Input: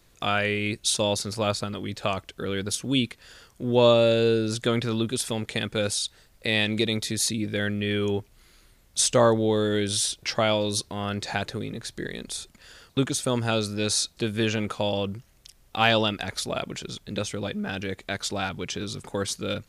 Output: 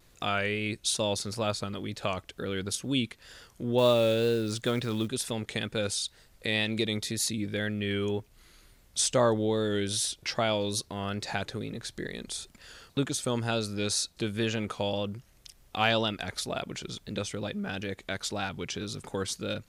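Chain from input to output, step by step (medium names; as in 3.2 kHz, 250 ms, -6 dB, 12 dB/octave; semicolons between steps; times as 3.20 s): in parallel at -2.5 dB: compression, threshold -38 dBFS, peak gain reduction 22 dB; 3.78–5.08 s: on the sum: companded quantiser 6-bit; wow and flutter 49 cents; trim -5.5 dB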